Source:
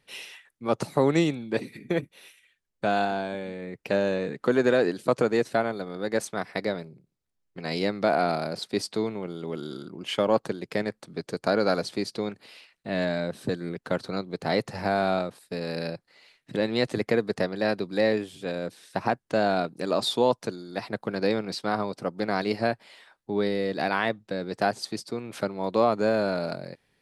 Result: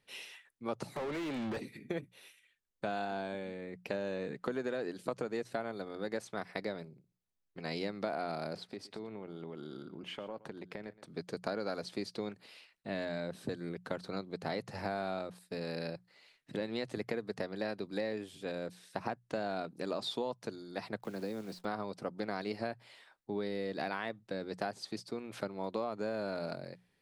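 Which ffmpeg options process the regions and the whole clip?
-filter_complex "[0:a]asettb=1/sr,asplit=3[a][b][c];[a]atrim=end=0.964[d];[b]atrim=start=0.96:end=1.57,asetpts=PTS-STARTPTS,afade=t=in:d=0.004:c=qsin,afade=t=out:st=0.606:d=0.004:c=qsin,acompressor=threshold=-34dB:ratio=6:attack=3.2:release=140:knee=1:detection=peak,asplit=2[e][f];[f]highpass=f=720:p=1,volume=36dB,asoftclip=type=tanh:threshold=-23dB[g];[e][g]amix=inputs=2:normalize=0,lowpass=f=1.8k:p=1,volume=-6dB[h];[c]atrim=start=1.566[i];[d][h]acrossfade=d=0.004:c1=hsin:c2=qsin[j];[j][i]acrossfade=d=0.004:c1=qsin:c2=hsin,asettb=1/sr,asplit=3[k][l][m];[k]atrim=end=8.564[n];[l]atrim=start=8.56:end=11.04,asetpts=PTS-STARTPTS,afade=t=in:d=0.004:c=qsin,afade=t=out:st=2.476:d=0.004:c=qsin,bass=f=250:g=0,treble=f=4k:g=-10,acompressor=threshold=-33dB:ratio=6:attack=3.2:release=140:knee=1:detection=peak,aecho=1:1:120:0.126,atrim=end_sample=109368[o];[m]atrim=start=11.036[p];[n][o]acrossfade=d=0.004:c1=hsin:c2=qsin[q];[q][p]acrossfade=d=0.004:c1=qsin:c2=hsin,asettb=1/sr,asplit=3[r][s][t];[r]atrim=end=20.994[u];[s]atrim=start=20.99:end=21.65,asetpts=PTS-STARTPTS,afade=t=in:d=0.004:c=qsin,afade=t=out:st=0.656:d=0.004:c=qsin,acrossover=split=140|300|1300|6900[v][w][x][y][z];[v]acompressor=threshold=-55dB:ratio=3[aa];[w]acompressor=threshold=-33dB:ratio=3[ab];[x]acompressor=threshold=-36dB:ratio=3[ac];[y]acompressor=threshold=-51dB:ratio=3[ad];[z]acompressor=threshold=-57dB:ratio=3[ae];[aa][ab][ac][ad][ae]amix=inputs=5:normalize=0,acrusher=bits=9:dc=4:mix=0:aa=0.000001[af];[t]atrim=start=21.646[ag];[u][af]acrossfade=d=0.004:c1=hsin:c2=qsin[ah];[ah][ag]acrossfade=d=0.004:c1=qsin:c2=hsin,acompressor=threshold=-26dB:ratio=6,bandreject=f=60:t=h:w=6,bandreject=f=120:t=h:w=6,bandreject=f=180:t=h:w=6,acrossover=split=5600[ai][aj];[aj]acompressor=threshold=-47dB:ratio=4:attack=1:release=60[ak];[ai][ak]amix=inputs=2:normalize=0,volume=-6.5dB"

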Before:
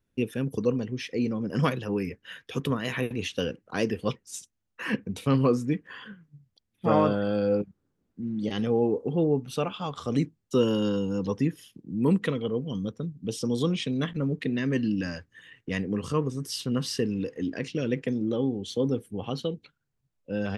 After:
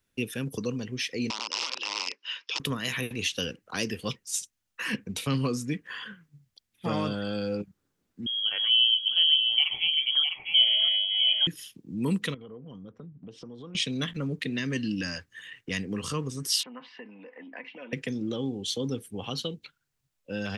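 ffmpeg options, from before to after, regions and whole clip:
-filter_complex "[0:a]asettb=1/sr,asplit=3[a][b][c];[a]atrim=end=1.304[d];[b]atrim=start=1.3:end=2.6,asetpts=PTS-STARTPTS,afade=t=in:d=0.004:c=qsin,afade=t=out:st=1.296:d=0.004:c=qsin,acompressor=threshold=-29dB:ratio=10:attack=3.2:release=140:knee=1:detection=peak,aeval=exprs='(mod(25.1*val(0)+1,2)-1)/25.1':c=same,highpass=f=350:w=0.5412,highpass=f=350:w=1.3066,equalizer=f=450:t=q:w=4:g=-5,equalizer=f=680:t=q:w=4:g=-8,equalizer=f=1k:t=q:w=4:g=8,equalizer=f=1.7k:t=q:w=4:g=-9,equalizer=f=2.7k:t=q:w=4:g=7,equalizer=f=5.2k:t=q:w=4:g=10,lowpass=f=5.7k:w=0.5412,lowpass=f=5.7k:w=1.3066[e];[c]atrim=start=2.596[f];[d][e]acrossfade=d=0.004:c1=hsin:c2=qsin[g];[g][f]acrossfade=d=0.004:c1=qsin:c2=hsin,asettb=1/sr,asplit=3[h][i][j];[h]atrim=end=8.264[k];[i]atrim=start=8.26:end=11.47,asetpts=PTS-STARTPTS,afade=t=in:d=0.004:c=qsin,afade=t=out:st=3.206:d=0.004:c=qsin,highpass=310,aecho=1:1:653:0.531,atrim=end_sample=141561,lowpass=f=3k:t=q:w=0.5098,lowpass=f=3k:t=q:w=0.6013,lowpass=f=3k:t=q:w=0.9,lowpass=f=3k:t=q:w=2.563,afreqshift=-3500[l];[j]atrim=start=11.466[m];[k][l]acrossfade=d=0.004:c1=hsin:c2=qsin[n];[n][m]acrossfade=d=0.004:c1=qsin:c2=hsin,asettb=1/sr,asplit=3[o][p][q];[o]atrim=end=12.344[r];[p]atrim=start=12.34:end=13.75,asetpts=PTS-STARTPTS,afade=t=in:d=0.004:c=qsin,afade=t=out:st=1.406:d=0.004:c=qsin,lowpass=1.6k,acompressor=threshold=-38dB:ratio=8:attack=3.2:release=140:knee=1:detection=peak[s];[q]atrim=start=13.746[t];[r][s]acrossfade=d=0.004:c1=hsin:c2=qsin[u];[u][t]acrossfade=d=0.004:c1=qsin:c2=hsin,asettb=1/sr,asplit=3[v][w][x];[v]atrim=end=16.634[y];[w]atrim=start=16.63:end=17.93,asetpts=PTS-STARTPTS,afade=t=in:d=0.004:c=qsin,afade=t=out:st=1.296:d=0.004:c=qsin,aecho=1:1:4:0.57,atrim=end_sample=57330,acompressor=threshold=-39dB:ratio=2.5:attack=3.2:release=140:knee=1:detection=peak,highpass=f=260:w=0.5412,highpass=f=260:w=1.3066,equalizer=f=300:t=q:w=4:g=-7,equalizer=f=450:t=q:w=4:g=-9,equalizer=f=640:t=q:w=4:g=5,equalizer=f=920:t=q:w=4:g=10,equalizer=f=1.4k:t=q:w=4:g=-4,equalizer=f=2.2k:t=q:w=4:g=4,lowpass=f=2.3k:w=0.5412,lowpass=f=2.3k:w=1.3066[z];[x]atrim=start=17.926[aa];[y][z]acrossfade=d=0.004:c1=hsin:c2=qsin[ab];[ab][aa]acrossfade=d=0.004:c1=qsin:c2=hsin,tiltshelf=f=970:g=-6,acrossover=split=290|3000[ac][ad][ae];[ad]acompressor=threshold=-39dB:ratio=2.5[af];[ac][af][ae]amix=inputs=3:normalize=0,volume=2.5dB"

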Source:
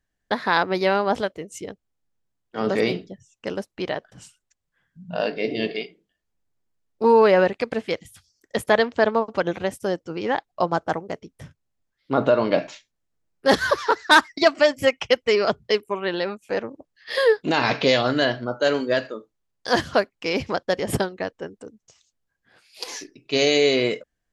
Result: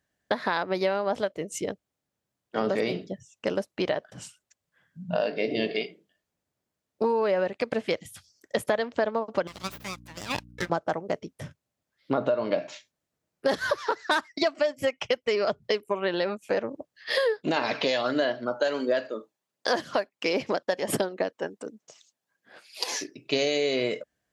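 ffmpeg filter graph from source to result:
-filter_complex "[0:a]asettb=1/sr,asplit=3[a][b][c];[a]atrim=end=9.474[d];[b]atrim=start=9.47:end=10.7,asetpts=PTS-STARTPTS,afade=t=in:d=0.004:c=qsin,afade=t=out:st=1.226:d=0.004:c=qsin,highpass=1.2k,aeval=exprs='abs(val(0))':c=same,aeval=exprs='val(0)+0.00398*(sin(2*PI*60*n/s)+sin(2*PI*2*60*n/s)/2+sin(2*PI*3*60*n/s)/3+sin(2*PI*4*60*n/s)/4+sin(2*PI*5*60*n/s)/5)':c=same[e];[c]atrim=start=10.696[f];[d][e]acrossfade=d=0.004:c1=hsin:c2=qsin[g];[g][f]acrossfade=d=0.004:c1=qsin:c2=hsin,asettb=1/sr,asplit=3[h][i][j];[h]atrim=end=17.564[k];[i]atrim=start=17.56:end=22.92,asetpts=PTS-STARTPTS,afade=t=in:d=0.004:c=qsin,afade=t=out:st=5.356:d=0.004:c=qsin,aphaser=in_gain=1:out_gain=1:delay=1.2:decay=0.34:speed=1.4:type=sinusoidal,highpass=230[l];[j]atrim=start=22.916[m];[k][l]acrossfade=d=0.004:c1=hsin:c2=qsin[n];[n][m]acrossfade=d=0.004:c1=qsin:c2=hsin,highpass=96,equalizer=f=600:t=o:w=0.28:g=5.5,acompressor=threshold=-26dB:ratio=6,volume=3dB"

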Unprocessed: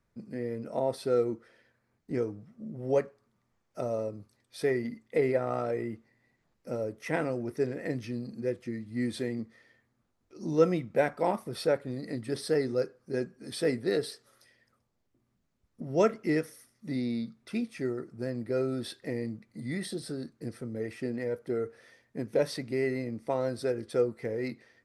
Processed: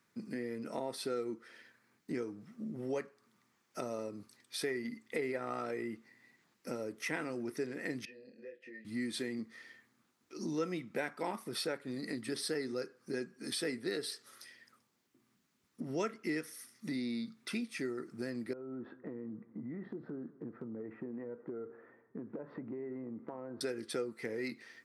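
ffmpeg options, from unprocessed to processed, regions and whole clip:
-filter_complex "[0:a]asettb=1/sr,asplit=3[a][b][c];[a]atrim=end=8.054[d];[b]atrim=start=8.05:end=8.85,asetpts=PTS-STARTPTS,afade=t=in:d=0.004:c=qsin,afade=t=out:st=0.796:d=0.004:c=qsin,asplit=3[e][f][g];[e]bandpass=f=530:t=q:w=8,volume=0dB[h];[f]bandpass=f=1.84k:t=q:w=8,volume=-6dB[i];[g]bandpass=f=2.48k:t=q:w=8,volume=-9dB[j];[h][i][j]amix=inputs=3:normalize=0,acompressor=threshold=-53dB:ratio=2:attack=3.2:release=140:knee=1:detection=peak,asplit=2[k][l];[l]adelay=23,volume=-4dB[m];[k][m]amix=inputs=2:normalize=0,atrim=end_sample=35280[n];[c]atrim=start=8.846[o];[d][n]acrossfade=d=0.004:c1=hsin:c2=qsin[p];[p][o]acrossfade=d=0.004:c1=qsin:c2=hsin,asettb=1/sr,asplit=3[q][r][s];[q]atrim=end=18.534[t];[r]atrim=start=18.53:end=23.61,asetpts=PTS-STARTPTS,afade=t=in:d=0.004:c=qsin,afade=t=out:st=5.076:d=0.004:c=qsin,lowpass=f=1.2k:w=0.5412,lowpass=f=1.2k:w=1.3066,acompressor=threshold=-40dB:ratio=5:attack=3.2:release=140:knee=1:detection=peak,aecho=1:1:207|414|621:0.0794|0.0334|0.014,atrim=end_sample=224028[u];[s]atrim=start=23.606[v];[t][u]acrossfade=d=0.004:c1=hsin:c2=qsin[w];[w][v]acrossfade=d=0.004:c1=qsin:c2=hsin,highpass=270,equalizer=f=590:w=1.2:g=-11.5,acompressor=threshold=-48dB:ratio=2.5,volume=9dB"

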